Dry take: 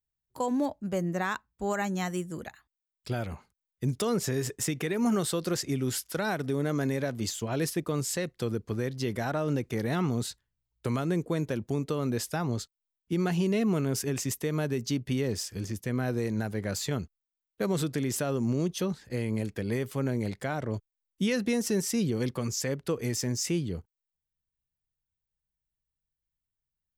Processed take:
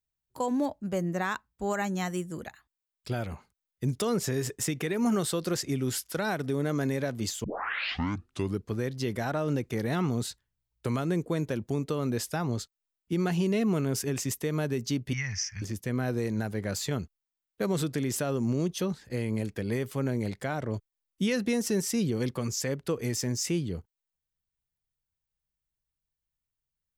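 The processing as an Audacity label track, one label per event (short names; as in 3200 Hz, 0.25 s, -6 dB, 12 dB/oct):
7.440000	7.440000	tape start 1.21 s
15.130000	15.620000	EQ curve 130 Hz 0 dB, 340 Hz -27 dB, 490 Hz -28 dB, 710 Hz -7 dB, 1400 Hz +2 dB, 2100 Hz +12 dB, 3900 Hz -15 dB, 5800 Hz +11 dB, 8500 Hz -24 dB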